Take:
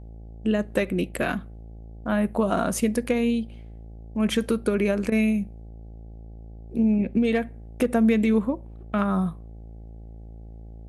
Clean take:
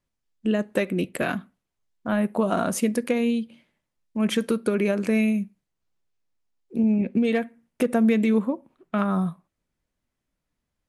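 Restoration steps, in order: de-hum 55.4 Hz, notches 15; interpolate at 5.10 s, 18 ms

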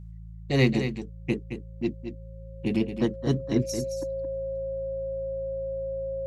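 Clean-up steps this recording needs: de-hum 55 Hz, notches 3; band-stop 540 Hz, Q 30; inverse comb 220 ms -9 dB

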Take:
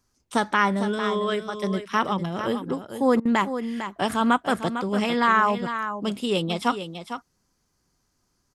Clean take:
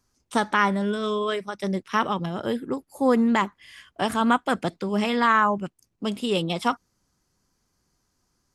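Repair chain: interpolate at 3.20 s, 52 ms; inverse comb 452 ms -9.5 dB

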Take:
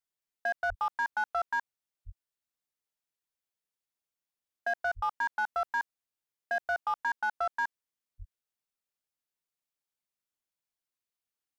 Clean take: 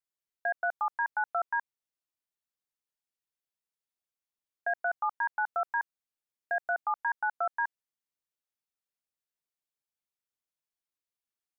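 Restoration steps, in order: clip repair -24 dBFS; de-plosive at 0.68/2.05/4.95/8.18 s

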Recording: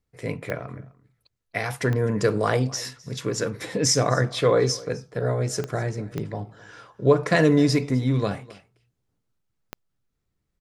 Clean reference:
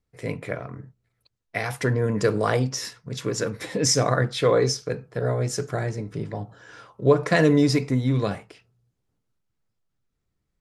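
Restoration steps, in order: de-click; inverse comb 256 ms -21.5 dB

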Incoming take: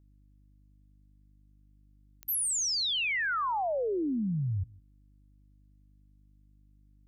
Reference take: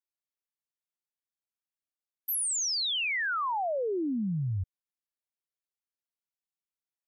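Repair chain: de-click; de-hum 50.2 Hz, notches 6; inverse comb 157 ms -23.5 dB

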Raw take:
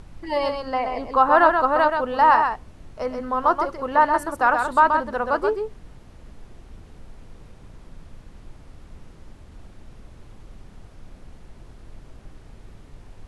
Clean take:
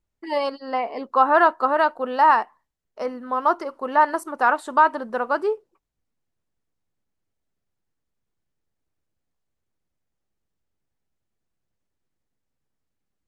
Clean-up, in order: noise print and reduce 30 dB; inverse comb 129 ms -5.5 dB

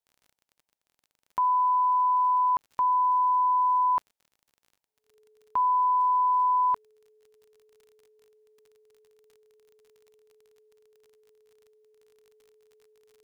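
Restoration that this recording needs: de-click; band-stop 430 Hz, Q 30; expander -70 dBFS, range -21 dB

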